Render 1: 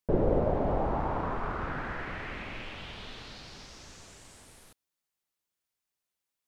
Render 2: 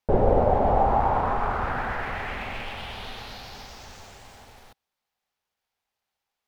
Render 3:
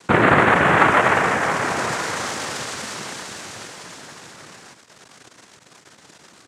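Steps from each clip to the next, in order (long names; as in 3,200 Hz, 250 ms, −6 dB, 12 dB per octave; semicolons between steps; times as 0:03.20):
running median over 5 samples; pitch vibrato 7.9 Hz 61 cents; thirty-one-band graphic EQ 160 Hz −8 dB, 315 Hz −9 dB, 800 Hz +8 dB; level +6.5 dB
surface crackle 540 per second −33 dBFS; cochlear-implant simulation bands 3; level +6.5 dB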